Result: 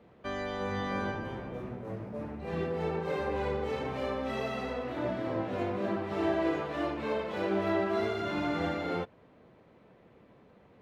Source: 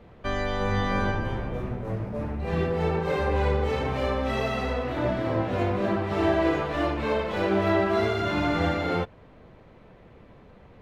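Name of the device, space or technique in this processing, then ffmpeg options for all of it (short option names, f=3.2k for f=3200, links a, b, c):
filter by subtraction: -filter_complex "[0:a]asplit=2[a][b];[b]lowpass=250,volume=-1[c];[a][c]amix=inputs=2:normalize=0,volume=-7.5dB"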